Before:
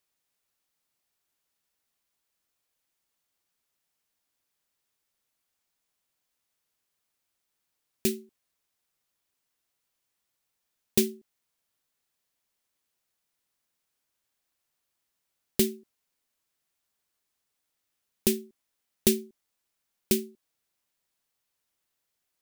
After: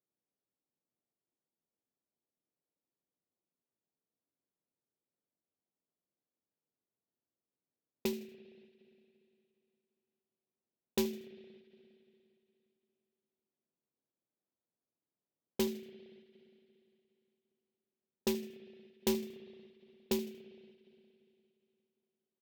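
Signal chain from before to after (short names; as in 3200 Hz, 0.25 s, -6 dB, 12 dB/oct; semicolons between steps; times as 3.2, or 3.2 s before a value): low shelf 190 Hz -3.5 dB; in parallel at +0.5 dB: limiter -18 dBFS, peak gain reduction 9.5 dB; on the sum: HPF 140 Hz 12 dB/oct; low-pass opened by the level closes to 400 Hz, open at -26 dBFS; bell 10000 Hz -13 dB 0.9 oct; feedback echo 78 ms, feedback 32%, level -17 dB; spring tank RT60 2.9 s, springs 33/58 ms, chirp 75 ms, DRR 15.5 dB; soft clip -20 dBFS, distortion -11 dB; ending taper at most 110 dB/s; gain -4.5 dB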